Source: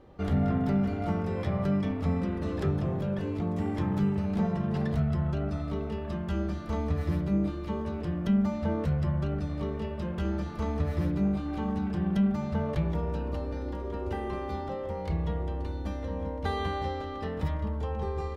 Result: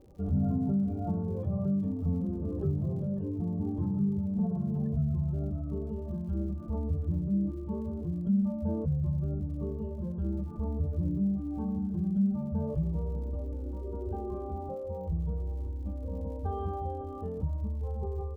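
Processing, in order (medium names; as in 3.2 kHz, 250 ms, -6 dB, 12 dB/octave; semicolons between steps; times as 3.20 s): spectral contrast enhancement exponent 1.6; boxcar filter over 22 samples; crackle 110 per s -52 dBFS; trim -1.5 dB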